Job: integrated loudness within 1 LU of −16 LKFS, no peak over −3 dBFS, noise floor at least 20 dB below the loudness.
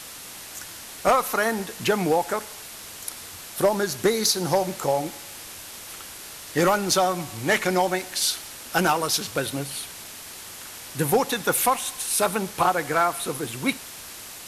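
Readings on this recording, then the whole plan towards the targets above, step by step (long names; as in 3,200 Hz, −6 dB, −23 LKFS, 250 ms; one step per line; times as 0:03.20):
number of dropouts 2; longest dropout 1.6 ms; background noise floor −40 dBFS; target noise floor −44 dBFS; integrated loudness −24.0 LKFS; sample peak −10.0 dBFS; target loudness −16.0 LKFS
→ repair the gap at 0:08.96/0:13.51, 1.6 ms
broadband denoise 6 dB, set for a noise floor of −40 dBFS
level +8 dB
brickwall limiter −3 dBFS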